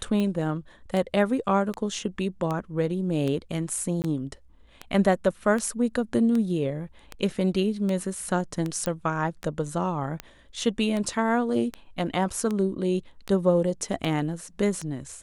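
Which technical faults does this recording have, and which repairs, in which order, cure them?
tick 78 rpm -17 dBFS
4.02–4.04 gap 19 ms
8.86 pop -13 dBFS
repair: de-click; interpolate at 4.02, 19 ms

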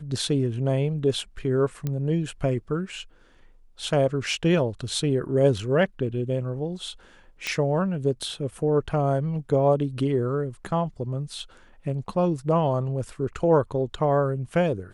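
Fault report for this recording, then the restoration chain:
1.87 pop -16 dBFS
7.47 pop -13 dBFS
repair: de-click

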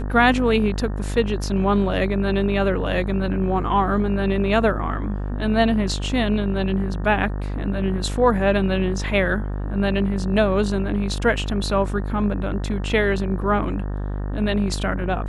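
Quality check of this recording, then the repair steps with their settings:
buzz 50 Hz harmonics 37 -26 dBFS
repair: de-hum 50 Hz, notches 37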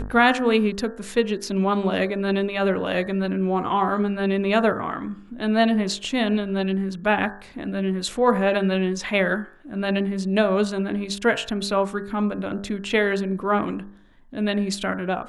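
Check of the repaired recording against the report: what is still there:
none

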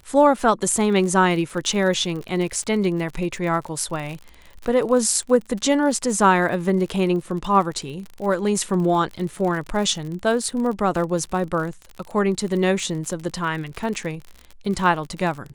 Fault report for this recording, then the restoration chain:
crackle 53/s -29 dBFS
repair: de-click

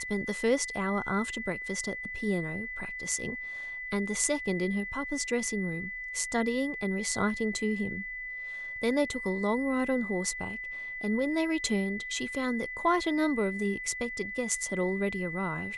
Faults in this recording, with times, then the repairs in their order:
tone 2000 Hz -36 dBFS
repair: notch 2000 Hz, Q 30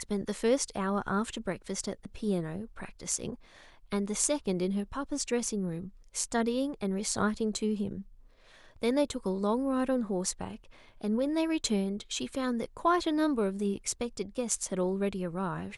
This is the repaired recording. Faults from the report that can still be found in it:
none

